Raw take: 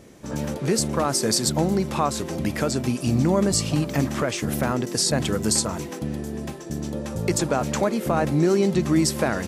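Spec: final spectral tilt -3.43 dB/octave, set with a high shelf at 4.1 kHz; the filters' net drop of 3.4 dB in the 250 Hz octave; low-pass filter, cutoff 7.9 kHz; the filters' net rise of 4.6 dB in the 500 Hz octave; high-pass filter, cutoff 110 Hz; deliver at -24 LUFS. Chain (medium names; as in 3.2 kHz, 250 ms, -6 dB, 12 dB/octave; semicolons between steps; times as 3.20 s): high-pass 110 Hz; low-pass 7.9 kHz; peaking EQ 250 Hz -8 dB; peaking EQ 500 Hz +8.5 dB; treble shelf 4.1 kHz +7.5 dB; trim -2.5 dB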